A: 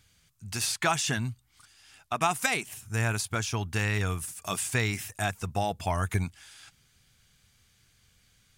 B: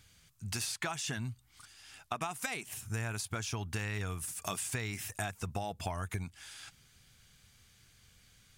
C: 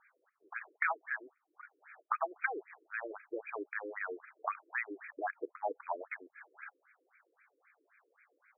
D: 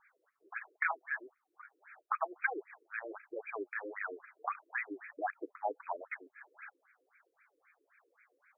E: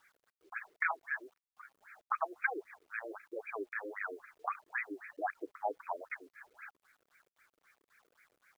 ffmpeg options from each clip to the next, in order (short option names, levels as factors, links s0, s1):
-af "acompressor=threshold=0.0178:ratio=10,volume=1.19"
-af "afftfilt=real='re*between(b*sr/1024,380*pow(1800/380,0.5+0.5*sin(2*PI*3.8*pts/sr))/1.41,380*pow(1800/380,0.5+0.5*sin(2*PI*3.8*pts/sr))*1.41)':imag='im*between(b*sr/1024,380*pow(1800/380,0.5+0.5*sin(2*PI*3.8*pts/sr))/1.41,380*pow(1800/380,0.5+0.5*sin(2*PI*3.8*pts/sr))*1.41)':win_size=1024:overlap=0.75,volume=2.37"
-af "flanger=delay=0.8:depth=7.8:regen=21:speed=1.5:shape=triangular,volume=1.41"
-af "acrusher=bits=11:mix=0:aa=0.000001"